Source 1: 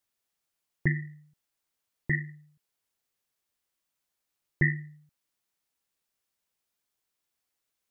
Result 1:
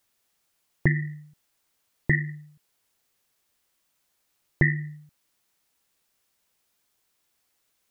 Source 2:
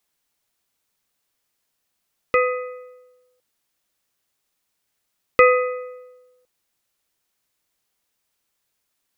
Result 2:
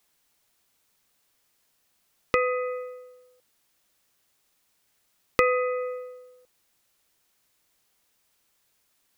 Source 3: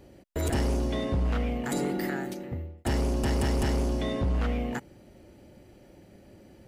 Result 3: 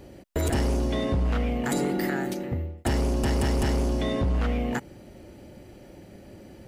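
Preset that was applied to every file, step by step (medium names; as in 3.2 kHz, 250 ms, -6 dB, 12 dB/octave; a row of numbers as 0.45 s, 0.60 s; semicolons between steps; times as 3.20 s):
compression 2.5:1, threshold -30 dBFS; normalise loudness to -27 LUFS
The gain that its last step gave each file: +10.0 dB, +5.0 dB, +6.0 dB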